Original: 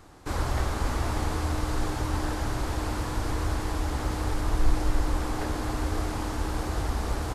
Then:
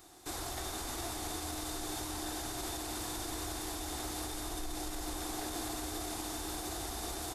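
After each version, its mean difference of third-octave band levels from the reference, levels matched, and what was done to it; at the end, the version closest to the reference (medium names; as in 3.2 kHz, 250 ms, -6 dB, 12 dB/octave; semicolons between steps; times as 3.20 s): 6.0 dB: pre-emphasis filter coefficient 0.9; peak limiter -36.5 dBFS, peak gain reduction 8 dB; small resonant body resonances 350/700/3600 Hz, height 12 dB, ringing for 30 ms; trim +5 dB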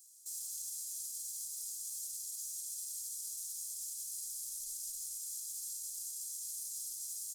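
31.0 dB: comb filter that takes the minimum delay 1.2 ms; inverse Chebyshev high-pass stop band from 2.1 kHz, stop band 60 dB; peak limiter -42.5 dBFS, peak gain reduction 6.5 dB; trim +9.5 dB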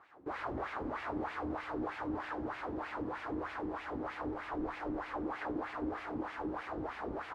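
12.5 dB: tone controls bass -1 dB, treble -10 dB; LFO band-pass sine 3.2 Hz 270–2400 Hz; trim +1.5 dB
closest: first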